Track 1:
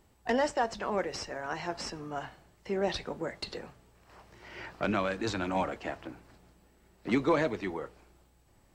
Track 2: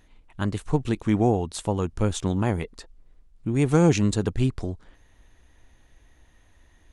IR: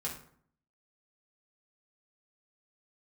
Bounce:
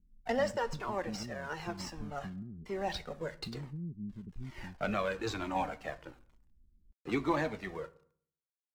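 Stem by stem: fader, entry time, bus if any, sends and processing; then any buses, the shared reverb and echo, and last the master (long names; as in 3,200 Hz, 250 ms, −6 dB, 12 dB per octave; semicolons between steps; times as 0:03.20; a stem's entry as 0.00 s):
0.0 dB, 0.00 s, send −12.5 dB, dead-zone distortion −51.5 dBFS; flanger whose copies keep moving one way falling 1.1 Hz
−9.5 dB, 0.00 s, no send, downward compressor 2.5 to 1, threshold −33 dBFS, peak gain reduction 13.5 dB; inverse Chebyshev low-pass filter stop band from 890 Hz, stop band 60 dB; comb filter 5.1 ms, depth 48%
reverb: on, RT60 0.60 s, pre-delay 3 ms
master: no processing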